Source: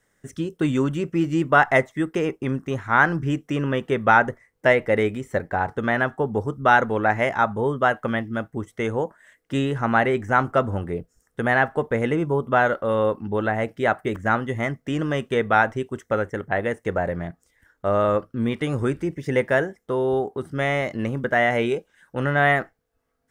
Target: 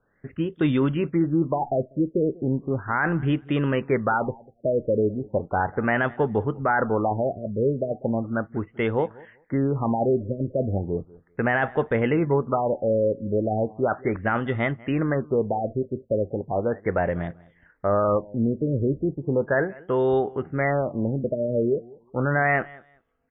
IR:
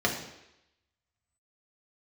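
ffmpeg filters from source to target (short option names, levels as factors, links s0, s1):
-af "alimiter=limit=0.211:level=0:latency=1:release=16,aecho=1:1:194|388:0.075|0.0135,afftfilt=real='re*lt(b*sr/1024,620*pow(3800/620,0.5+0.5*sin(2*PI*0.36*pts/sr)))':imag='im*lt(b*sr/1024,620*pow(3800/620,0.5+0.5*sin(2*PI*0.36*pts/sr)))':win_size=1024:overlap=0.75,volume=1.12"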